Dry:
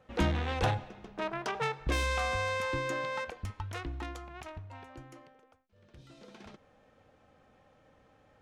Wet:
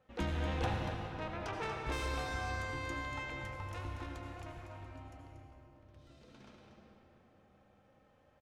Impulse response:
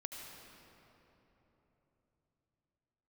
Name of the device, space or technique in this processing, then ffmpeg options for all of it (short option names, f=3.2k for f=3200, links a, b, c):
cave: -filter_complex "[0:a]aecho=1:1:236:0.376[a];[1:a]atrim=start_sample=2205[b];[a][b]afir=irnorm=-1:irlink=0,volume=-4dB"